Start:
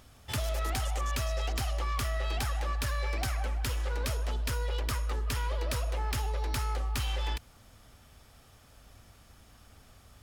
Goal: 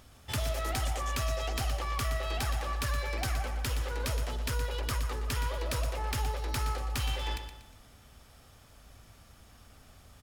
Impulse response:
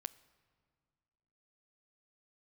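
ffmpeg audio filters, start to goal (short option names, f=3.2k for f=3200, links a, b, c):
-af "aecho=1:1:119|238|357|476:0.355|0.142|0.0568|0.0227"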